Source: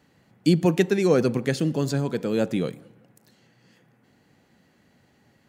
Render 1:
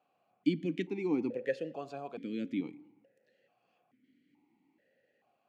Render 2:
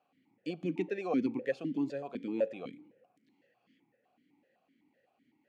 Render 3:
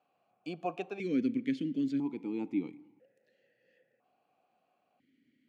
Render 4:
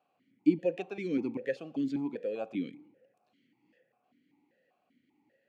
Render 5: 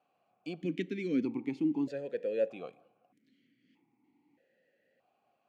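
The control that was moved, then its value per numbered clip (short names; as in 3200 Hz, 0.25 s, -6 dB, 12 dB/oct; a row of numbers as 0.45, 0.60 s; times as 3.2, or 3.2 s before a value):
vowel sequencer, rate: 2.3, 7.9, 1, 5.1, 1.6 Hz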